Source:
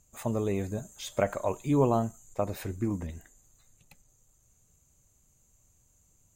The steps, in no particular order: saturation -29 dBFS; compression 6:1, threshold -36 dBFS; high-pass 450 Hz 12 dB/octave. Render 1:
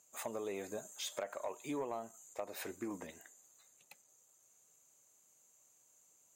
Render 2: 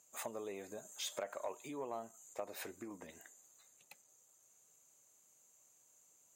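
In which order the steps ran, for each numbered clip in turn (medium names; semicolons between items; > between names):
high-pass > compression > saturation; compression > high-pass > saturation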